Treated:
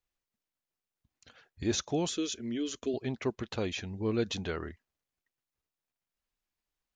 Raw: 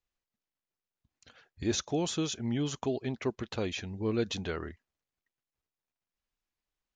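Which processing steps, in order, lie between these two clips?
0:02.09–0:02.94: phaser with its sweep stopped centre 350 Hz, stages 4

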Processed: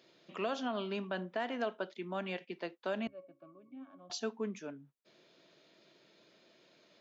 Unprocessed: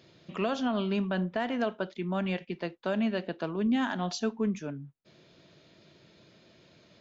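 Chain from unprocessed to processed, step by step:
high-pass filter 290 Hz 12 dB per octave
0:03.07–0:04.10: resonances in every octave C#, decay 0.2 s
level −4.5 dB

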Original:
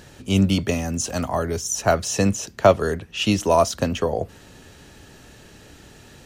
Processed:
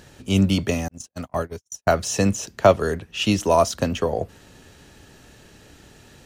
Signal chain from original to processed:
0:00.88–0:01.98: noise gate −22 dBFS, range −57 dB
in parallel at −10 dB: dead-zone distortion −40.5 dBFS
on the sum: level −2.5 dB

